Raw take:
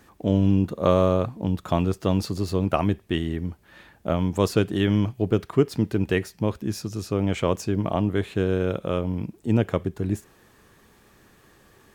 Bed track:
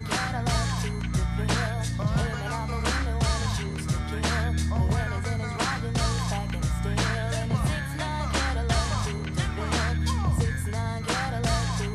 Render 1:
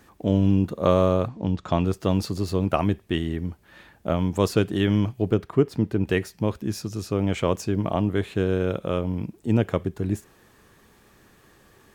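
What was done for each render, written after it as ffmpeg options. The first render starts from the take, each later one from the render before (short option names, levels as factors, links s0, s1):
-filter_complex "[0:a]asettb=1/sr,asplit=3[s0][s1][s2];[s0]atrim=end=1.284[s3];[s1]atrim=start=1.28:end=1.85,asetpts=PTS-STARTPTS,afade=t=in:d=0.004:c=qsin,afade=t=out:st=0.566:d=0.004:c=qsin,lowpass=f=6900:w=0.5412,lowpass=f=6900:w=1.3066[s4];[s2]atrim=start=1.846[s5];[s3][s4]acrossfade=d=0.004:c1=hsin:c2=qsin[s6];[s6][s5]acrossfade=d=0.004:c1=qsin:c2=hsin,asettb=1/sr,asplit=3[s7][s8][s9];[s7]atrim=end=5.344[s10];[s8]atrim=start=5.34:end=6.07,asetpts=PTS-STARTPTS,afade=t=in:d=0.004:c=qsin,afade=t=out:st=0.726:d=0.004:c=qsin,highshelf=f=2300:g=-7.5[s11];[s9]atrim=start=6.066[s12];[s10][s11]acrossfade=d=0.004:c1=hsin:c2=qsin[s13];[s13][s12]acrossfade=d=0.004:c1=qsin:c2=hsin"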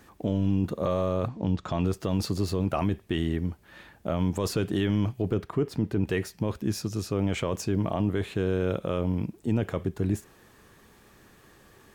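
-af "alimiter=limit=0.158:level=0:latency=1:release=12"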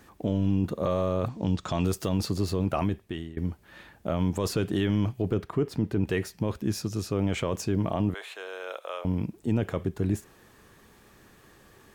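-filter_complex "[0:a]asettb=1/sr,asplit=3[s0][s1][s2];[s0]atrim=end=1.264[s3];[s1]atrim=start=1.26:end=2.09,asetpts=PTS-STARTPTS,afade=t=in:d=0.004:c=qsin,afade=t=out:st=0.826:d=0.004:c=qsin,highshelf=f=4200:g=11.5[s4];[s2]atrim=start=2.086[s5];[s3][s4]acrossfade=d=0.004:c1=hsin:c2=qsin[s6];[s6][s5]acrossfade=d=0.004:c1=qsin:c2=hsin,asettb=1/sr,asplit=3[s7][s8][s9];[s7]atrim=end=8.144[s10];[s8]atrim=start=8.14:end=9.05,asetpts=PTS-STARTPTS,afade=t=in:d=0.004:c=qsin,afade=t=out:st=0.906:d=0.004:c=qsin,highpass=f=630:w=0.5412,highpass=f=630:w=1.3066[s11];[s9]atrim=start=9.046[s12];[s10][s11]acrossfade=d=0.004:c1=hsin:c2=qsin[s13];[s13][s12]acrossfade=d=0.004:c1=qsin:c2=hsin,asplit=2[s14][s15];[s14]atrim=end=3.37,asetpts=PTS-STARTPTS,afade=t=out:st=2.82:d=0.55:silence=0.1[s16];[s15]atrim=start=3.37,asetpts=PTS-STARTPTS,afade=t=in:d=0.004:c=hsin:silence=0.1[s17];[s16][s17]concat=n=2:v=0:a=1"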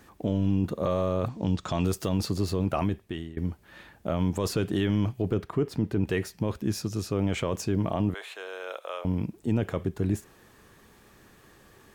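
-af anull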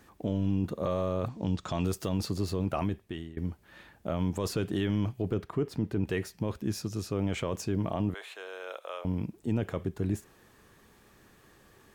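-af "volume=0.668"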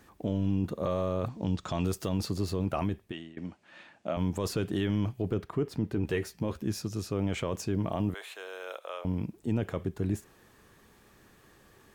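-filter_complex "[0:a]asettb=1/sr,asplit=3[s0][s1][s2];[s0]atrim=end=3.124[s3];[s1]atrim=start=3.12:end=4.17,asetpts=PTS-STARTPTS,afade=t=in:d=0.004:c=qsin,afade=t=out:st=1.046:d=0.004:c=qsin,highpass=210,equalizer=f=420:t=q:w=4:g=-7,equalizer=f=650:t=q:w=4:g=4,equalizer=f=2600:t=q:w=4:g=5,lowpass=f=8100:w=0.5412,lowpass=f=8100:w=1.3066[s4];[s2]atrim=start=4.166[s5];[s3][s4]acrossfade=d=0.004:c1=hsin:c2=qsin[s6];[s6][s5]acrossfade=d=0.004:c1=qsin:c2=hsin,asettb=1/sr,asplit=3[s7][s8][s9];[s7]atrim=end=5.934[s10];[s8]atrim=start=5.93:end=6.66,asetpts=PTS-STARTPTS,afade=t=in:d=0.004:c=qsin,afade=t=out:st=0.726:d=0.004:c=qsin,asplit=2[s11][s12];[s12]adelay=13,volume=0.376[s13];[s11][s13]amix=inputs=2:normalize=0,atrim=end_sample=32193[s14];[s9]atrim=start=6.656[s15];[s10][s14]acrossfade=d=0.004:c1=hsin:c2=qsin[s16];[s16][s15]acrossfade=d=0.004:c1=qsin:c2=hsin,asettb=1/sr,asplit=3[s17][s18][s19];[s17]atrim=end=7.914[s20];[s18]atrim=start=7.91:end=8.77,asetpts=PTS-STARTPTS,afade=t=in:d=0.004:c=qsin,afade=t=out:st=0.856:d=0.004:c=qsin,highshelf=f=8400:g=8[s21];[s19]atrim=start=8.766[s22];[s20][s21]acrossfade=d=0.004:c1=hsin:c2=qsin[s23];[s23][s22]acrossfade=d=0.004:c1=qsin:c2=hsin"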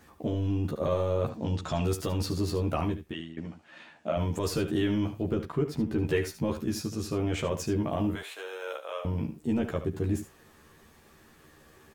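-filter_complex "[0:a]asplit=2[s0][s1];[s1]adelay=13,volume=0.794[s2];[s0][s2]amix=inputs=2:normalize=0,aecho=1:1:74:0.266"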